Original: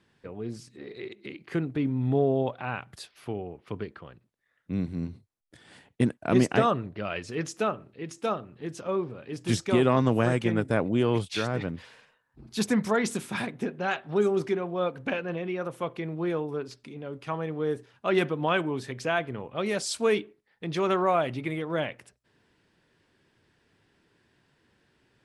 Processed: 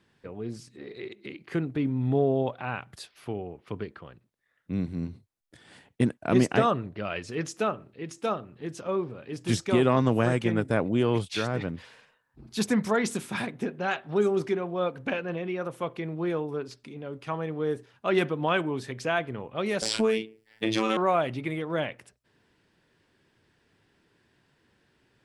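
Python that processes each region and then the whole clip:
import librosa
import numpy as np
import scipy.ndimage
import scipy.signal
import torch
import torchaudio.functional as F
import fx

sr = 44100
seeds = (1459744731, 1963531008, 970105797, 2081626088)

y = fx.chain(x, sr, fx.robotise(hz=110.0),
    fx.doubler(ms=36.0, db=-4.0),
    fx.band_squash(depth_pct=100), at=(19.82, 20.97))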